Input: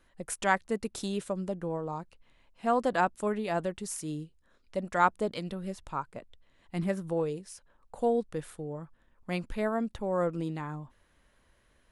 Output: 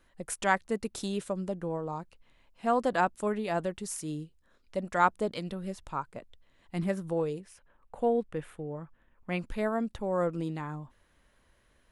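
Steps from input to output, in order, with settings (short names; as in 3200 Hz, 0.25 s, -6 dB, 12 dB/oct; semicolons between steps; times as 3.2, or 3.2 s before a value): 7.4–9.39 resonant high shelf 3500 Hz -7.5 dB, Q 1.5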